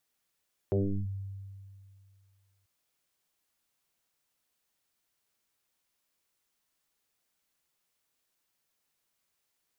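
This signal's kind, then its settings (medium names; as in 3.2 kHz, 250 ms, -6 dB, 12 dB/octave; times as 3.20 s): FM tone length 1.94 s, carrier 97.7 Hz, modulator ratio 1.01, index 4.6, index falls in 0.36 s linear, decay 2.35 s, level -23 dB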